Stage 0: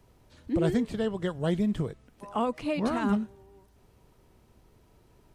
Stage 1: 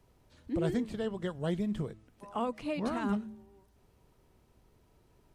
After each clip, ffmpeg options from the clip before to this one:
-af "bandreject=f=107.7:t=h:w=4,bandreject=f=215.4:t=h:w=4,bandreject=f=323.1:t=h:w=4,volume=-5dB"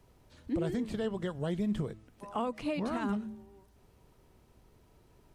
-af "alimiter=level_in=3dB:limit=-24dB:level=0:latency=1:release=109,volume=-3dB,volume=3dB"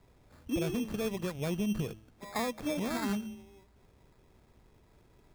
-af "acrusher=samples=15:mix=1:aa=0.000001"

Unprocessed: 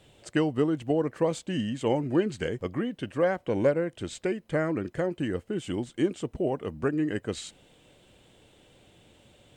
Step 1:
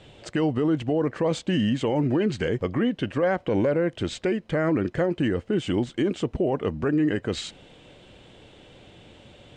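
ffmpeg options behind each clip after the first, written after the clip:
-af "lowpass=5.2k,alimiter=limit=-24dB:level=0:latency=1:release=30,volume=8.5dB"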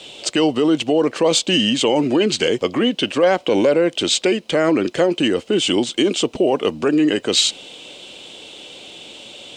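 -filter_complex "[0:a]aexciter=amount=9.2:drive=7.3:freq=2.7k,acrossover=split=220 2200:gain=0.112 1 0.224[a][b][c];[a][b][c]amix=inputs=3:normalize=0,volume=8.5dB"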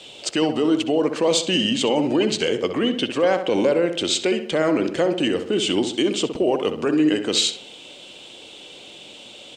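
-filter_complex "[0:a]asplit=2[a][b];[b]adelay=65,lowpass=f=2.4k:p=1,volume=-8dB,asplit=2[c][d];[d]adelay=65,lowpass=f=2.4k:p=1,volume=0.5,asplit=2[e][f];[f]adelay=65,lowpass=f=2.4k:p=1,volume=0.5,asplit=2[g][h];[h]adelay=65,lowpass=f=2.4k:p=1,volume=0.5,asplit=2[i][j];[j]adelay=65,lowpass=f=2.4k:p=1,volume=0.5,asplit=2[k][l];[l]adelay=65,lowpass=f=2.4k:p=1,volume=0.5[m];[a][c][e][g][i][k][m]amix=inputs=7:normalize=0,volume=-4dB"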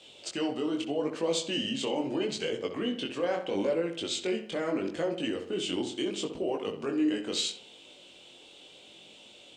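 -af "flanger=delay=18:depth=5.3:speed=0.77,volume=-8dB"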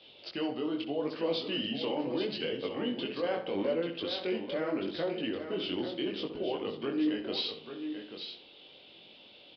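-af "aecho=1:1:838:0.376,aresample=11025,aresample=44100,volume=-2.5dB"

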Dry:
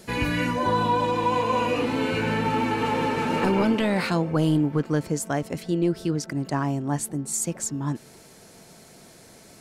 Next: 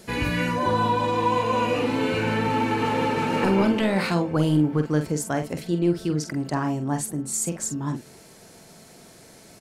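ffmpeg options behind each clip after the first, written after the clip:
-filter_complex "[0:a]asplit=2[a][b];[b]adelay=46,volume=-8dB[c];[a][c]amix=inputs=2:normalize=0"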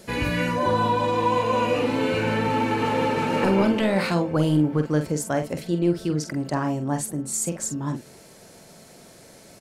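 -af "equalizer=f=560:w=6.8:g=6"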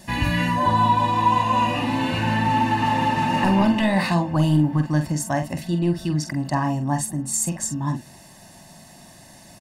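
-af "aecho=1:1:1.1:0.91"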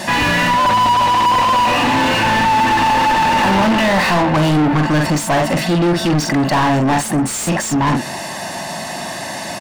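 -filter_complex "[0:a]asplit=2[a][b];[b]highpass=f=720:p=1,volume=35dB,asoftclip=type=tanh:threshold=-7dB[c];[a][c]amix=inputs=2:normalize=0,lowpass=f=2.3k:p=1,volume=-6dB"

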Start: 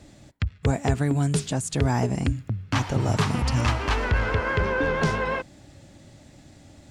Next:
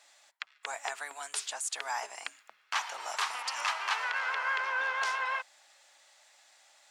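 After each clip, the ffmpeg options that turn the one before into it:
-af "highpass=f=850:w=0.5412,highpass=f=850:w=1.3066,volume=-2.5dB"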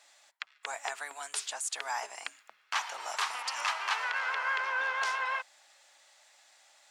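-af anull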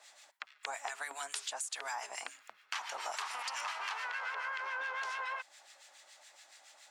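-filter_complex "[0:a]asplit=2[a][b];[b]alimiter=level_in=3dB:limit=-24dB:level=0:latency=1:release=18,volume=-3dB,volume=-2.5dB[c];[a][c]amix=inputs=2:normalize=0,acrossover=split=1300[d][e];[d]aeval=exprs='val(0)*(1-0.7/2+0.7/2*cos(2*PI*7.1*n/s))':c=same[f];[e]aeval=exprs='val(0)*(1-0.7/2-0.7/2*cos(2*PI*7.1*n/s))':c=same[g];[f][g]amix=inputs=2:normalize=0,acompressor=threshold=-37dB:ratio=6,volume=1dB"

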